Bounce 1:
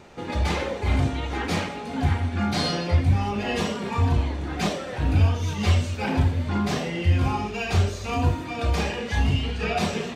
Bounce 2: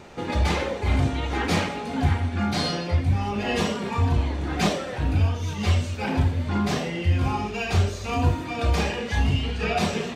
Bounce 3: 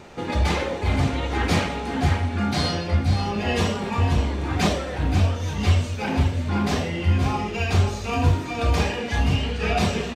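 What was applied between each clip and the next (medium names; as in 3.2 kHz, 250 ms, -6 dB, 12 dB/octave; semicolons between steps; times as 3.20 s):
gain riding within 4 dB 0.5 s
delay 530 ms -8.5 dB; trim +1 dB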